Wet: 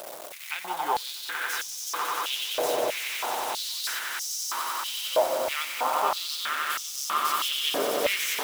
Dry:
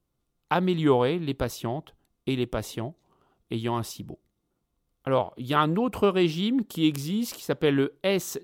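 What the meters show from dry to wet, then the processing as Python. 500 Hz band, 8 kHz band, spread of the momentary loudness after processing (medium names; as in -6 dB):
-3.5 dB, +10.5 dB, 5 LU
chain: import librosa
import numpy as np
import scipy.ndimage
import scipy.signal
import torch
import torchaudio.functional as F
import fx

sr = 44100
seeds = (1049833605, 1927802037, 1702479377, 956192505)

p1 = x + 0.5 * 10.0 ** (-25.5 / 20.0) * np.sign(x)
p2 = fx.high_shelf(p1, sr, hz=11000.0, db=5.0)
p3 = p2 + fx.echo_swell(p2, sr, ms=92, loudest=8, wet_db=-6.5, dry=0)
p4 = fx.filter_held_highpass(p3, sr, hz=3.1, low_hz=610.0, high_hz=5800.0)
y = p4 * 10.0 ** (-8.0 / 20.0)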